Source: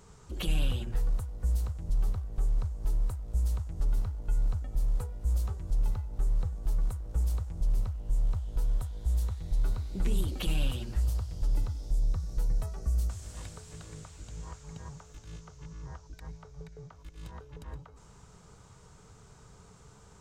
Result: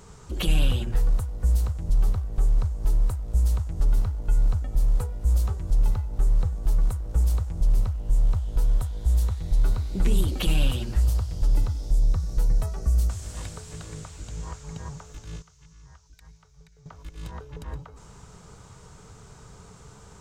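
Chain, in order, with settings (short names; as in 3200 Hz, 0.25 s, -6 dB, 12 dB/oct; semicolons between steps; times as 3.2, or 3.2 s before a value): 15.42–16.86 passive tone stack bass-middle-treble 5-5-5; gain +7 dB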